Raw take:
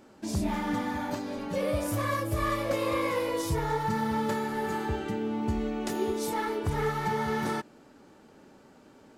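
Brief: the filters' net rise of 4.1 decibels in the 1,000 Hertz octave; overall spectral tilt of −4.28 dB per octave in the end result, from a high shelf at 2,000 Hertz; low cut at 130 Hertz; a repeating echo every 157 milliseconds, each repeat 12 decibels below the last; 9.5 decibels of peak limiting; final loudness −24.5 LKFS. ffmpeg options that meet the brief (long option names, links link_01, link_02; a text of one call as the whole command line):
ffmpeg -i in.wav -af "highpass=130,equalizer=frequency=1000:width_type=o:gain=3.5,highshelf=frequency=2000:gain=5.5,alimiter=limit=-23dB:level=0:latency=1,aecho=1:1:157|314|471:0.251|0.0628|0.0157,volume=7dB" out.wav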